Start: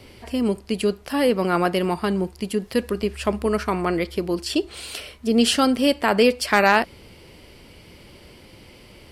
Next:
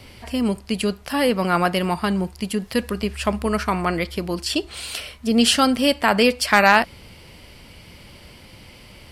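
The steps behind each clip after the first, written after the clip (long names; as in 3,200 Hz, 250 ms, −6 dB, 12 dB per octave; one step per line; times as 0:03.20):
parametric band 380 Hz −7.5 dB 0.96 octaves
level +3.5 dB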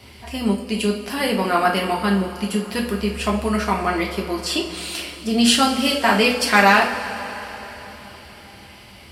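high-pass filter 130 Hz 6 dB per octave
coupled-rooms reverb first 0.37 s, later 4.3 s, from −18 dB, DRR −2 dB
level −2.5 dB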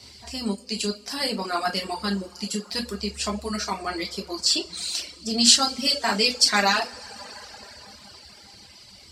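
flat-topped bell 5,600 Hz +14 dB 1.3 octaves
reverb reduction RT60 1.2 s
level −7 dB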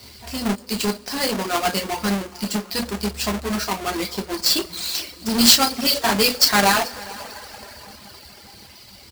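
each half-wave held at its own peak
single-tap delay 434 ms −21 dB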